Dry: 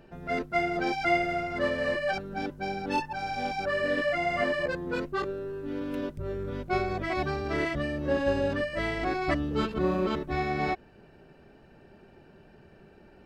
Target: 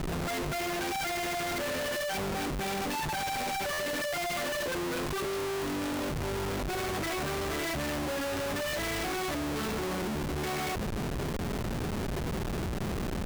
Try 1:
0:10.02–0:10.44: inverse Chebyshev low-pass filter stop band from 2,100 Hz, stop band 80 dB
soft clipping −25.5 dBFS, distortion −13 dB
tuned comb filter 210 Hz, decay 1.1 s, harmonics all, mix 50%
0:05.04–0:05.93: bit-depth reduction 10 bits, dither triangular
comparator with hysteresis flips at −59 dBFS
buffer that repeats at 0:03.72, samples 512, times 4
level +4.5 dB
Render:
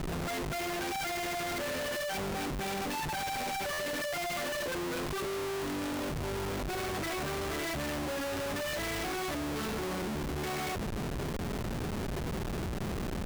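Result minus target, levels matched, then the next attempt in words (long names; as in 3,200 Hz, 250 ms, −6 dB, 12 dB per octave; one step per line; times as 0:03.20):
soft clipping: distortion +14 dB
0:10.02–0:10.44: inverse Chebyshev low-pass filter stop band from 2,100 Hz, stop band 80 dB
soft clipping −15.5 dBFS, distortion −27 dB
tuned comb filter 210 Hz, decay 1.1 s, harmonics all, mix 50%
0:05.04–0:05.93: bit-depth reduction 10 bits, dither triangular
comparator with hysteresis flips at −59 dBFS
buffer that repeats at 0:03.72, samples 512, times 4
level +4.5 dB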